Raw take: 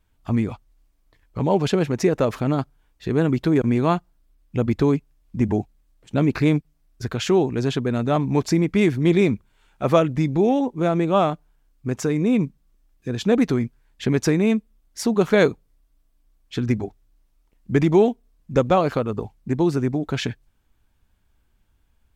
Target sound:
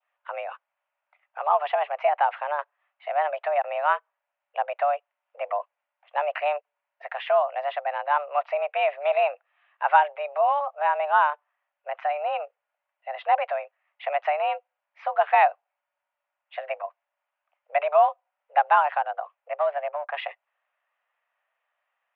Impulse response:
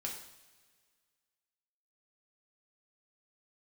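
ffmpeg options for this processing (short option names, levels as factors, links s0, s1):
-filter_complex "[0:a]asettb=1/sr,asplit=3[s0][s1][s2];[s0]atrim=end=19.584[s3];[s1]atrim=start=19.58:end=20.15,asetpts=PTS-STARTPTS,afade=t=in:d=0.004:c=qsin,afade=t=out:st=0.566:d=0.004:c=qsin,adynamicsmooth=sensitivity=6.5:basefreq=950[s4];[s2]atrim=start=20.146[s5];[s3][s4]acrossfade=d=0.004:c1=hsin:c2=qsin[s6];[s6][s5]acrossfade=d=0.004:c1=qsin:c2=hsin,highpass=f=370:t=q:w=0.5412,highpass=f=370:t=q:w=1.307,lowpass=f=2500:t=q:w=0.5176,lowpass=f=2500:t=q:w=0.7071,lowpass=f=2500:t=q:w=1.932,afreqshift=290,adynamicequalizer=threshold=0.0158:dfrequency=1800:dqfactor=1.5:tfrequency=1800:tqfactor=1.5:attack=5:release=100:ratio=0.375:range=2:mode=cutabove:tftype=bell"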